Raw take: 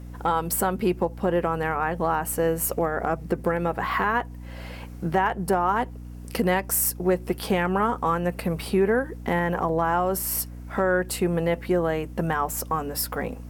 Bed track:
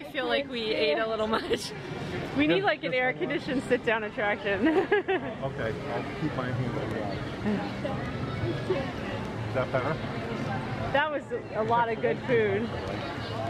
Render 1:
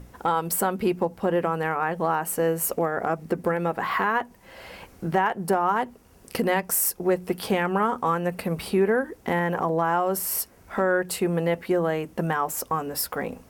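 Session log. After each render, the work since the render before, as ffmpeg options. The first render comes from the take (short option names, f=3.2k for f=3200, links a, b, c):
-af "bandreject=f=60:t=h:w=6,bandreject=f=120:t=h:w=6,bandreject=f=180:t=h:w=6,bandreject=f=240:t=h:w=6,bandreject=f=300:t=h:w=6"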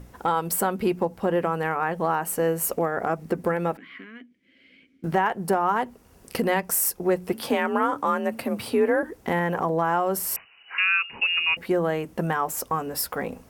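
-filter_complex "[0:a]asettb=1/sr,asplit=3[a][b][c];[a]atrim=end=3.774[d];[b]atrim=start=3.77:end=5.04,asetpts=PTS-STARTPTS,afade=t=in:d=0.004:c=qsin,afade=t=out:st=1.266:d=0.004:c=qsin,asplit=3[e][f][g];[e]bandpass=f=270:t=q:w=8,volume=0dB[h];[f]bandpass=f=2.29k:t=q:w=8,volume=-6dB[i];[g]bandpass=f=3.01k:t=q:w=8,volume=-9dB[j];[h][i][j]amix=inputs=3:normalize=0[k];[c]atrim=start=5.036[l];[d][k]acrossfade=d=0.004:c1=hsin:c2=qsin[m];[m][l]acrossfade=d=0.004:c1=qsin:c2=hsin,asettb=1/sr,asplit=3[n][o][p];[n]atrim=end=7.334[q];[o]atrim=start=7.33:end=9.03,asetpts=PTS-STARTPTS,afade=t=in:d=0.004:c=qsin,afade=t=out:st=1.696:d=0.004:c=qsin,afreqshift=45[r];[p]atrim=start=9.026[s];[q][r]acrossfade=d=0.004:c1=hsin:c2=qsin[t];[t][s]acrossfade=d=0.004:c1=qsin:c2=hsin,asettb=1/sr,asplit=3[u][v][w];[u]atrim=end=10.364[x];[v]atrim=start=10.36:end=11.57,asetpts=PTS-STARTPTS,afade=t=in:d=0.004:c=qsin,afade=t=out:st=1.206:d=0.004:c=qsin,lowpass=f=2.6k:t=q:w=0.5098,lowpass=f=2.6k:t=q:w=0.6013,lowpass=f=2.6k:t=q:w=0.9,lowpass=f=2.6k:t=q:w=2.563,afreqshift=-3000[y];[w]atrim=start=11.566[z];[x][y]acrossfade=d=0.004:c1=hsin:c2=qsin[aa];[aa][z]acrossfade=d=0.004:c1=qsin:c2=hsin"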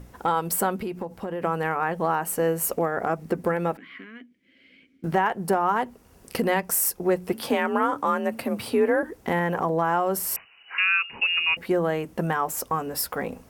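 -filter_complex "[0:a]asettb=1/sr,asplit=3[a][b][c];[a]atrim=end=0.824[d];[b]atrim=start=0.82:end=1.42,asetpts=PTS-STARTPTS,afade=t=in:d=0.004:c=qsin,afade=t=out:st=0.596:d=0.004:c=qsin,acompressor=threshold=-28dB:ratio=4:attack=3.2:release=140:knee=1:detection=peak[e];[c]atrim=start=1.416[f];[d][e]acrossfade=d=0.004:c1=hsin:c2=qsin[g];[g][f]acrossfade=d=0.004:c1=qsin:c2=hsin"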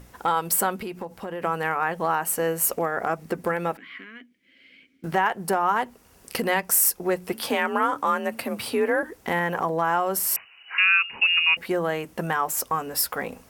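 -af "tiltshelf=f=790:g=-4"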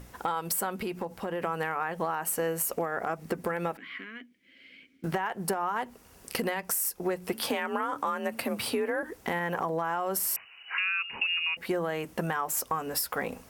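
-af "alimiter=limit=-15dB:level=0:latency=1:release=168,acompressor=threshold=-26dB:ratio=6"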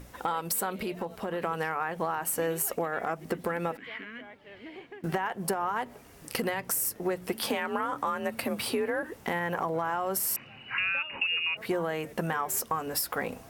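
-filter_complex "[1:a]volume=-22dB[a];[0:a][a]amix=inputs=2:normalize=0"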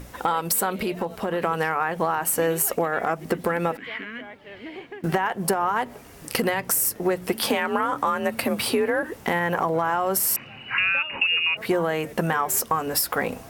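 -af "volume=7dB"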